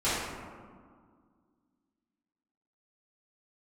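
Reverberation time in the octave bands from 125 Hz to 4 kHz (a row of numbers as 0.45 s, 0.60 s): 2.1 s, 2.7 s, 1.9 s, 1.9 s, 1.3 s, 0.80 s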